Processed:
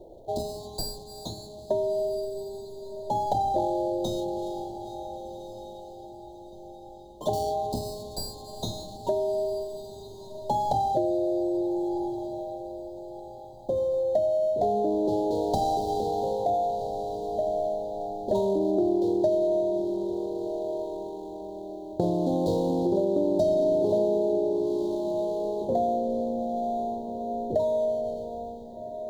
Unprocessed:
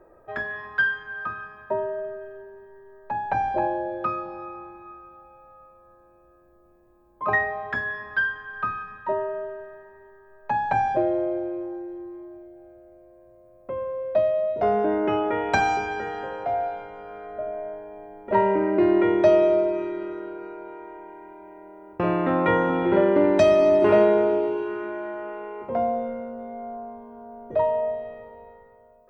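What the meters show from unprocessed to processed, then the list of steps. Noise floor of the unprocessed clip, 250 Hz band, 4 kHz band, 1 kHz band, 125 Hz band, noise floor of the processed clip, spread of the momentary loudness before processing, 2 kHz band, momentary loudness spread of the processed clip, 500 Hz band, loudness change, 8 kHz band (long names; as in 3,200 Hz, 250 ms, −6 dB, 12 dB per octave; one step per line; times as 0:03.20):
−55 dBFS, −2.0 dB, +1.5 dB, −3.0 dB, 0.0 dB, −44 dBFS, 21 LU, below −40 dB, 16 LU, −2.5 dB, −4.0 dB, can't be measured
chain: running median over 25 samples
elliptic band-stop filter 780–4,000 Hz, stop band 40 dB
downward compressor 4 to 1, threshold −32 dBFS, peak gain reduction 15 dB
on a send: feedback delay with all-pass diffusion 1,424 ms, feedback 44%, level −13 dB
on the sum: level +8 dB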